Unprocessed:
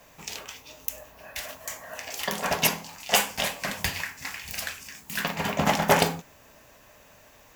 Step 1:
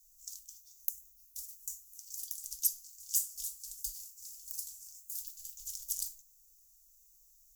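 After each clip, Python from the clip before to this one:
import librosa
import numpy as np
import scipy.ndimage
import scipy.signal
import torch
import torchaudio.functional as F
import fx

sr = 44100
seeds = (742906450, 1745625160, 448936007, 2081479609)

y = scipy.signal.sosfilt(scipy.signal.cheby2(4, 60, [110.0, 2100.0], 'bandstop', fs=sr, output='sos'), x)
y = y * 10.0 ** (-3.0 / 20.0)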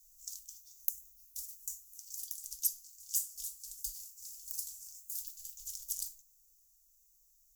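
y = fx.rider(x, sr, range_db=4, speed_s=2.0)
y = y * 10.0 ** (-2.0 / 20.0)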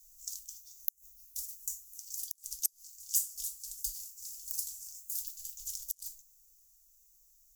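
y = fx.gate_flip(x, sr, shuts_db=-17.0, range_db=-30)
y = y * 10.0 ** (3.5 / 20.0)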